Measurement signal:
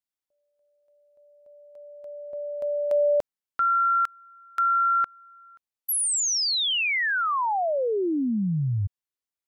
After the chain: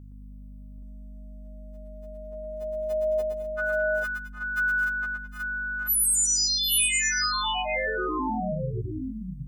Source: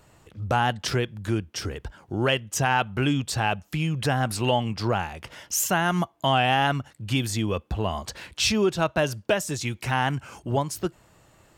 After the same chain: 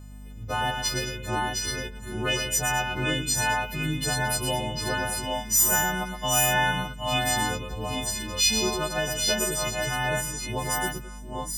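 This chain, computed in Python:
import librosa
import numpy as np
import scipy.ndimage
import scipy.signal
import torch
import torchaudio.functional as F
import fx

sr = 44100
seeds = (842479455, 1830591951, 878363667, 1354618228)

y = fx.freq_snap(x, sr, grid_st=3)
y = fx.add_hum(y, sr, base_hz=50, snr_db=13)
y = fx.echo_multitap(y, sr, ms=(116, 214, 216, 759, 783, 825), db=(-6.0, -15.5, -19.0, -13.0, -7.5, -5.0))
y = F.gain(torch.from_numpy(y), -7.0).numpy()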